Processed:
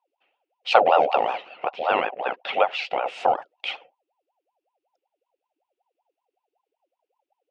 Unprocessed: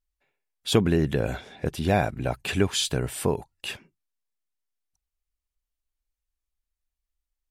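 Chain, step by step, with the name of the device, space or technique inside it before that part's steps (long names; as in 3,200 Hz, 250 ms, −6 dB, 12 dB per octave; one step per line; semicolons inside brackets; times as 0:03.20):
0:01.42–0:03.06: bass and treble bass −5 dB, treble −15 dB
voice changer toy (ring modulator whose carrier an LFO sweeps 660 Hz, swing 55%, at 5.3 Hz; loudspeaker in its box 500–4,400 Hz, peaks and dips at 530 Hz +7 dB, 750 Hz +9 dB, 1,100 Hz −6 dB, 1,700 Hz −5 dB, 2,700 Hz +8 dB, 4,100 Hz −5 dB)
level +5 dB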